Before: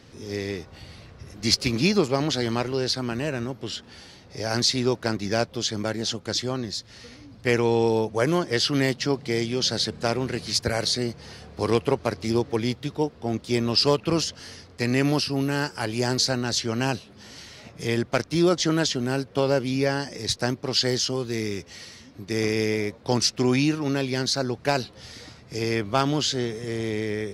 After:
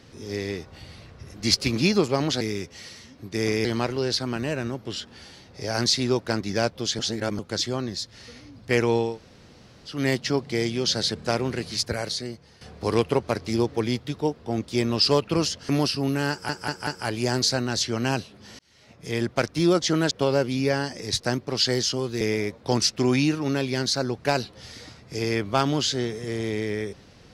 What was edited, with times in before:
5.75–6.15 reverse
7.83–8.73 room tone, crossfade 0.24 s
10.28–11.37 fade out, to -14 dB
14.45–15.02 cut
15.63 stutter 0.19 s, 4 plays
17.35–18.07 fade in
18.87–19.27 cut
21.37–22.61 move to 2.41

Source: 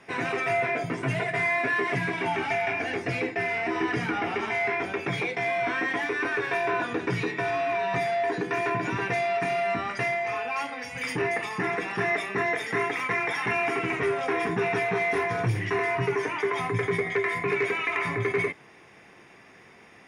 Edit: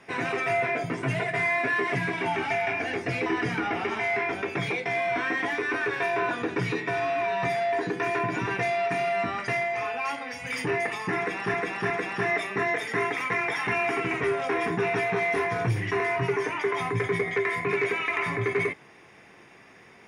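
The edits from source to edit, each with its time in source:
3.26–3.77 cut
11.69–12.05 loop, 3 plays

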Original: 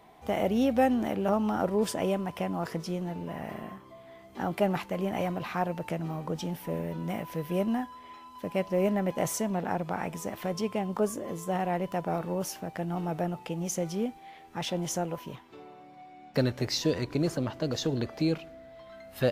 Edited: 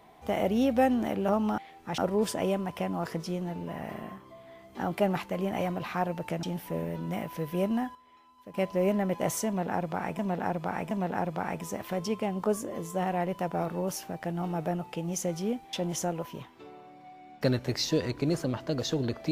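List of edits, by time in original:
6.03–6.4 cut
7.92–8.51 gain -11 dB
9.44–10.16 loop, 3 plays
14.26–14.66 move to 1.58

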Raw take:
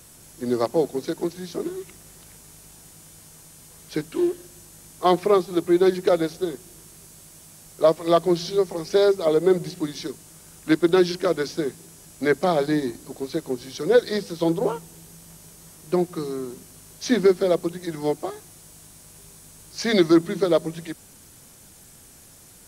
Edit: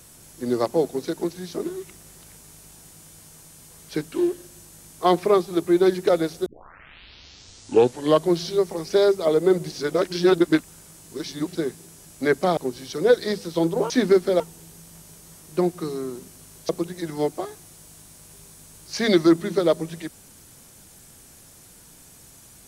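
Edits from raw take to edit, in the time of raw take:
6.46 tape start 1.83 s
9.72–11.55 reverse
12.57–13.42 cut
17.04–17.54 move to 14.75

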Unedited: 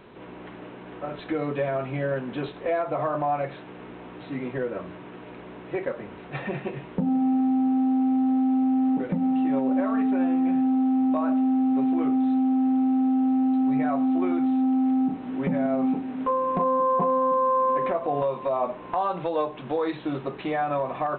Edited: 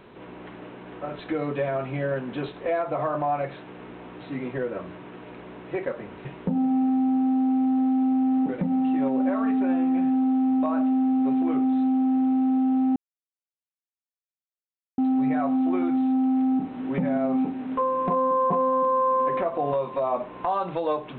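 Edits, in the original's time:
6.25–6.76 cut
13.47 insert silence 2.02 s

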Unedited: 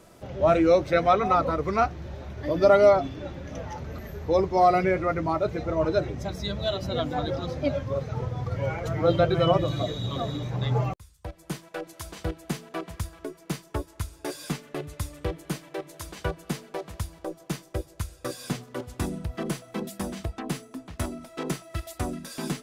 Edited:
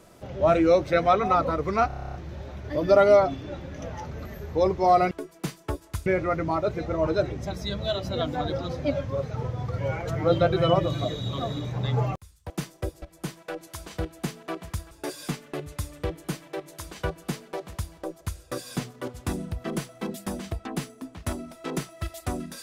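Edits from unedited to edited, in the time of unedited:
1.87 stutter 0.03 s, 10 plays
13.17–14.12 move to 4.84
17.42–17.94 move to 11.28

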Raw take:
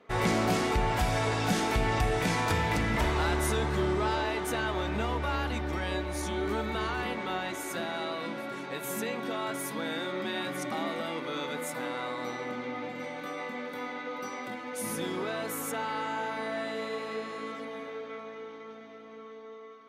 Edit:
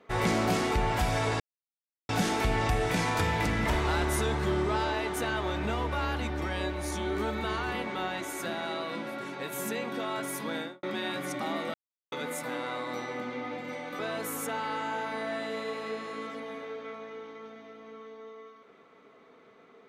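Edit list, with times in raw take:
1.4 insert silence 0.69 s
9.87–10.14 studio fade out
11.05–11.43 mute
13.3–15.24 cut

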